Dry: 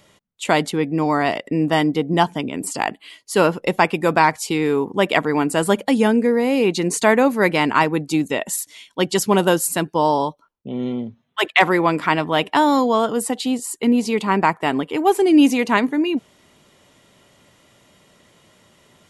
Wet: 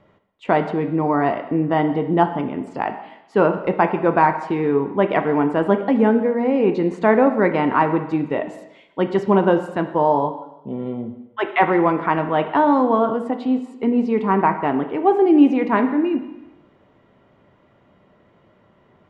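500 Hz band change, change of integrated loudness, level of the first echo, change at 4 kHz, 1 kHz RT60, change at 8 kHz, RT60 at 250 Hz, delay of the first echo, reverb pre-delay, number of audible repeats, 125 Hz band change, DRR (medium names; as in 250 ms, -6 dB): +1.0 dB, -0.5 dB, no echo, -14.0 dB, 1.0 s, under -30 dB, 0.90 s, no echo, 3 ms, no echo, 0.0 dB, 6.5 dB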